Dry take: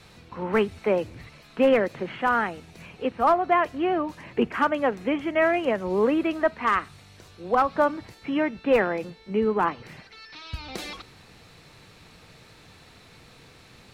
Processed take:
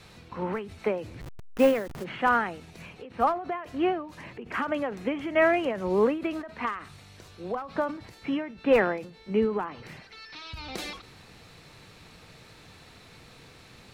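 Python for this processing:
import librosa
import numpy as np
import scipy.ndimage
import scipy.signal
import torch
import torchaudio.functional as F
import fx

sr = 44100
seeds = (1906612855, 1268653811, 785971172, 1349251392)

y = fx.delta_hold(x, sr, step_db=-33.5, at=(1.2, 2.03), fade=0.02)
y = fx.end_taper(y, sr, db_per_s=100.0)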